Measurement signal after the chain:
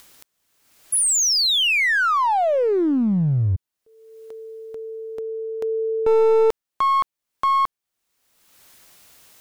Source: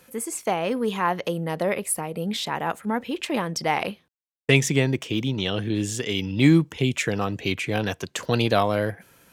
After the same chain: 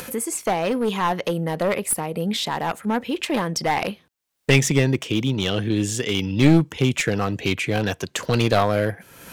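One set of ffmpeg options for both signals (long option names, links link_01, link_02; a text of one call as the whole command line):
ffmpeg -i in.wav -af "acompressor=mode=upward:threshold=-27dB:ratio=2.5,aeval=exprs='clip(val(0),-1,0.0944)':channel_layout=same,volume=3.5dB" out.wav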